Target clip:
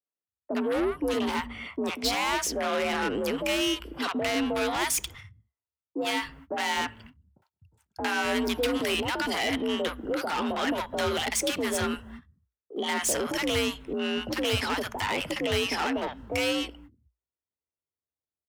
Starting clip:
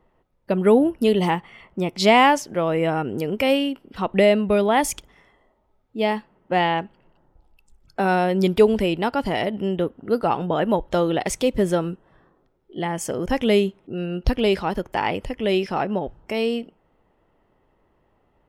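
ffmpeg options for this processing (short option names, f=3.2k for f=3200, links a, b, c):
-filter_complex "[0:a]agate=range=-43dB:threshold=-50dB:ratio=16:detection=peak,acrossover=split=250|1100[a][b][c];[c]dynaudnorm=f=130:g=31:m=11.5dB[d];[a][b][d]amix=inputs=3:normalize=0,alimiter=limit=-11dB:level=0:latency=1:release=118,asplit=2[e][f];[f]acompressor=threshold=-32dB:ratio=6,volume=-2.5dB[g];[e][g]amix=inputs=2:normalize=0,aeval=exprs='0.251*(abs(mod(val(0)/0.251+3,4)-2)-1)':c=same,afreqshift=58,asoftclip=type=tanh:threshold=-23dB,acrossover=split=160|800[h][i][j];[j]adelay=60[k];[h]adelay=250[l];[l][i][k]amix=inputs=3:normalize=0"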